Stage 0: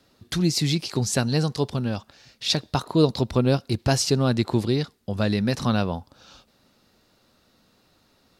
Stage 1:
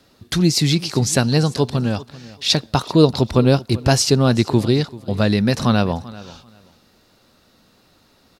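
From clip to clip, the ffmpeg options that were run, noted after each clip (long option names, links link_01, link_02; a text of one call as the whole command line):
ffmpeg -i in.wav -af "aecho=1:1:389|778:0.112|0.0224,volume=6dB" out.wav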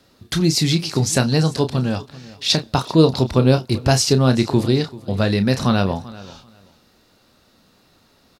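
ffmpeg -i in.wav -filter_complex "[0:a]asplit=2[link_01][link_02];[link_02]adelay=31,volume=-9.5dB[link_03];[link_01][link_03]amix=inputs=2:normalize=0,volume=-1dB" out.wav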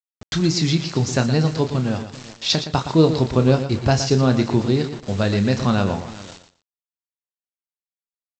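ffmpeg -i in.wav -af "aresample=16000,acrusher=bits=5:mix=0:aa=0.000001,aresample=44100,aecho=1:1:117|234:0.299|0.0537,adynamicequalizer=threshold=0.0141:dfrequency=2700:dqfactor=0.7:tfrequency=2700:tqfactor=0.7:attack=5:release=100:ratio=0.375:range=2.5:mode=cutabove:tftype=highshelf,volume=-1.5dB" out.wav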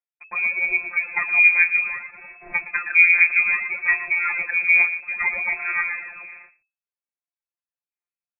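ffmpeg -i in.wav -af "afftfilt=real='hypot(re,im)*cos(PI*b)':imag='0':win_size=1024:overlap=0.75,aphaser=in_gain=1:out_gain=1:delay=3.2:decay=0.67:speed=0.62:type=sinusoidal,lowpass=frequency=2200:width_type=q:width=0.5098,lowpass=frequency=2200:width_type=q:width=0.6013,lowpass=frequency=2200:width_type=q:width=0.9,lowpass=frequency=2200:width_type=q:width=2.563,afreqshift=-2600,volume=-1dB" out.wav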